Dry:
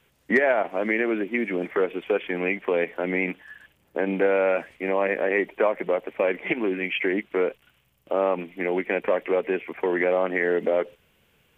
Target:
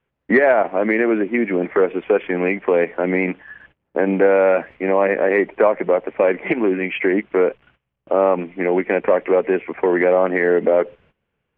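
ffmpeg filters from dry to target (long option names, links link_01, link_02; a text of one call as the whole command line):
ffmpeg -i in.wav -af "acontrast=55,lowpass=1900,agate=range=-17dB:threshold=-51dB:ratio=16:detection=peak,volume=1.5dB" out.wav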